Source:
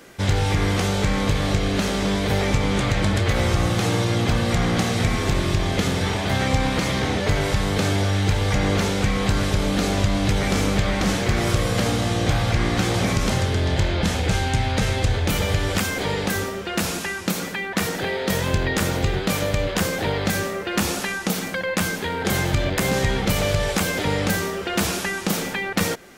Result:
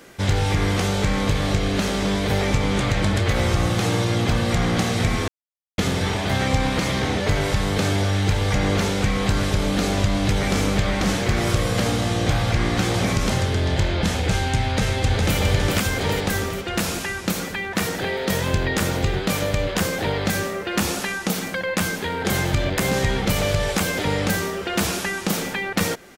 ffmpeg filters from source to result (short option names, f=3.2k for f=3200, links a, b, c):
-filter_complex "[0:a]asplit=2[a][b];[b]afade=t=in:st=14.63:d=0.01,afade=t=out:st=15.38:d=0.01,aecho=0:1:410|820|1230|1640|2050|2460|2870|3280|3690|4100:0.630957|0.410122|0.266579|0.173277|0.11263|0.0732094|0.0475861|0.030931|0.0201051|0.0130683[c];[a][c]amix=inputs=2:normalize=0,asplit=3[d][e][f];[d]atrim=end=5.28,asetpts=PTS-STARTPTS,afade=t=out:st=5.276:d=0.004:c=hsin[g];[e]atrim=start=5.28:end=5.78,asetpts=PTS-STARTPTS,volume=0[h];[f]atrim=start=5.78,asetpts=PTS-STARTPTS,afade=t=in:d=0.004:c=hsin[i];[g][h][i]concat=n=3:v=0:a=1"